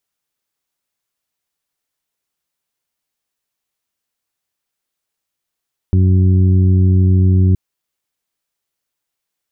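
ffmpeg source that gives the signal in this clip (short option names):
-f lavfi -i "aevalsrc='0.376*sin(2*PI*92.9*t)+0.141*sin(2*PI*185.8*t)+0.0596*sin(2*PI*278.7*t)+0.0473*sin(2*PI*371.6*t)':d=1.62:s=44100"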